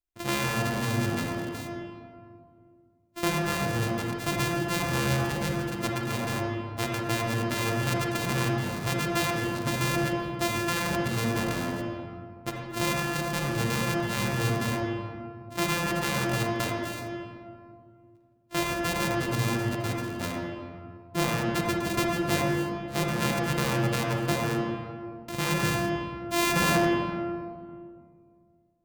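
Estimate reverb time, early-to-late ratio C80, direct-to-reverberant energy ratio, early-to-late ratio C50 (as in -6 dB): 2.1 s, 2.5 dB, -0.5 dB, 0.0 dB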